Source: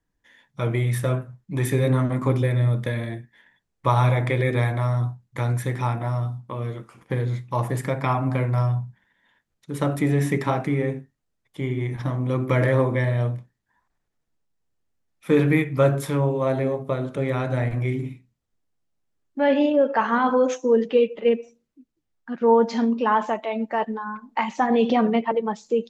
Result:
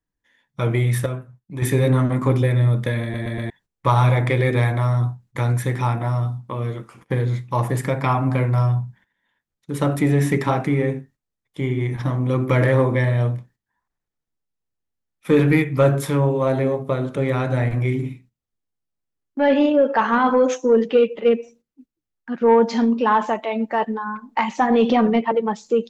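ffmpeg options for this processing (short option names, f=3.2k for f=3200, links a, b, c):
-filter_complex "[0:a]asplit=7[a][b][c][d][e][f][g];[a]atrim=end=1.062[h];[b]atrim=start=1.058:end=1.622,asetpts=PTS-STARTPTS,volume=-8dB[i];[c]atrim=start=1.618:end=3.142[j];[d]atrim=start=3.018:end=3.142[k];[e]atrim=start=3.018:end=3.142[l];[f]atrim=start=3.018:end=3.142[m];[g]atrim=start=3.498[n];[h][i]acrossfade=d=0.004:c1=hsin:c2=hsin[o];[o][j]acrossfade=d=0.004:c1=hsin:c2=hsin[p];[p][k]acrossfade=d=0.004:c1=hsin:c2=hsin[q];[q][l]acrossfade=d=0.004:c1=hsin:c2=hsin[r];[r][m]acrossfade=d=0.004:c1=hsin:c2=hsin[s];[s][n]acrossfade=d=0.004:c1=hsin:c2=hsin,agate=range=-11dB:threshold=-51dB:ratio=16:detection=peak,equalizer=f=640:w=7.2:g=-2.5,acontrast=75,volume=-3dB"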